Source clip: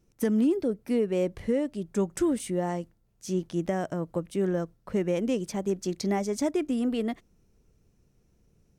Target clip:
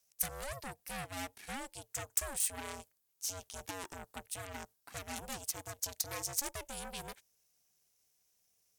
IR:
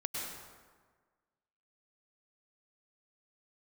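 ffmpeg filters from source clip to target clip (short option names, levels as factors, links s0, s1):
-filter_complex "[0:a]aeval=exprs='0.178*(cos(1*acos(clip(val(0)/0.178,-1,1)))-cos(1*PI/2))+0.0224*(cos(8*acos(clip(val(0)/0.178,-1,1)))-cos(8*PI/2))':c=same,acrossover=split=180|1300|6300[s0][s1][s2][s3];[s2]alimiter=level_in=2.99:limit=0.0631:level=0:latency=1:release=431,volume=0.335[s4];[s0][s1][s4][s3]amix=inputs=4:normalize=0,aderivative,aeval=exprs='val(0)*sin(2*PI*280*n/s)':c=same,volume=2.82"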